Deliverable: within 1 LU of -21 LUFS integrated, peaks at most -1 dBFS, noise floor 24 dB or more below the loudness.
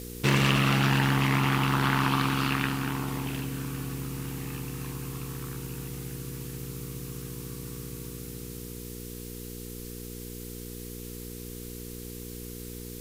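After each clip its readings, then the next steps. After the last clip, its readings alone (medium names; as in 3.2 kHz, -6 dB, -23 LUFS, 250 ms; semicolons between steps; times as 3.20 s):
hum 60 Hz; highest harmonic 480 Hz; hum level -38 dBFS; noise floor -40 dBFS; noise floor target -55 dBFS; loudness -30.5 LUFS; peak level -6.0 dBFS; loudness target -21.0 LUFS
-> de-hum 60 Hz, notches 8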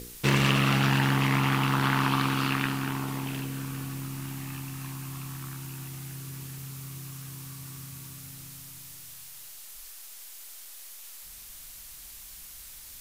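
hum not found; noise floor -46 dBFS; noise floor target -53 dBFS
-> noise print and reduce 7 dB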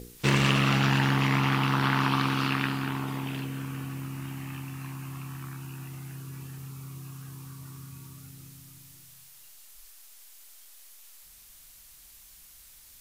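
noise floor -53 dBFS; loudness -28.0 LUFS; peak level -6.5 dBFS; loudness target -21.0 LUFS
-> trim +7 dB; peak limiter -1 dBFS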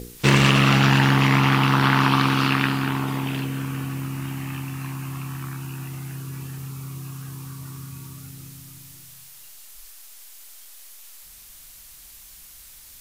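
loudness -21.0 LUFS; peak level -1.0 dBFS; noise floor -46 dBFS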